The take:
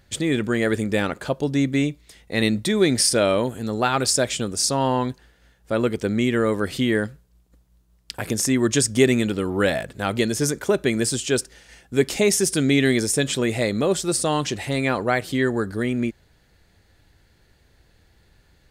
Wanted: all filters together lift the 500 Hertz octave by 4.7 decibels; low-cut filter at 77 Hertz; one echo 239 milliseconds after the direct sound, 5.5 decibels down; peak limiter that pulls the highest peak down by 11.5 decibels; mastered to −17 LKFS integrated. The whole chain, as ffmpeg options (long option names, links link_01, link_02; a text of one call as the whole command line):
ffmpeg -i in.wav -af "highpass=77,equalizer=frequency=500:width_type=o:gain=6,alimiter=limit=-12.5dB:level=0:latency=1,aecho=1:1:239:0.531,volume=5.5dB" out.wav